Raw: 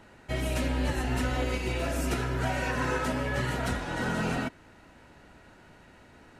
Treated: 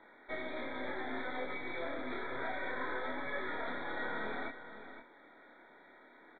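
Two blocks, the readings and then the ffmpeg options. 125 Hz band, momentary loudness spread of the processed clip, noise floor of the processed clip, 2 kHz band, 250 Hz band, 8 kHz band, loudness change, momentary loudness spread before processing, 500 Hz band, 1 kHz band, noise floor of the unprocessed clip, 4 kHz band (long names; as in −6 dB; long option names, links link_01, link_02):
−27.0 dB, 20 LU, −60 dBFS, −5.5 dB, −12.5 dB, below −40 dB, −9.5 dB, 2 LU, −8.0 dB, −7.0 dB, −55 dBFS, −11.0 dB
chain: -filter_complex "[0:a]highpass=frequency=280:width=0.5412,highpass=frequency=280:width=1.3066,equalizer=frequency=2800:width=1.5:gain=7,acompressor=threshold=-34dB:ratio=2.5,aeval=exprs='0.0708*(cos(1*acos(clip(val(0)/0.0708,-1,1)))-cos(1*PI/2))+0.00794*(cos(8*acos(clip(val(0)/0.0708,-1,1)))-cos(8*PI/2))':channel_layout=same,flanger=delay=22.5:depth=7.6:speed=0.62,asuperstop=centerf=2800:order=12:qfactor=2.7,asplit=2[link_01][link_02];[link_02]aecho=0:1:515:0.266[link_03];[link_01][link_03]amix=inputs=2:normalize=0,aresample=8000,aresample=44100,volume=-1dB"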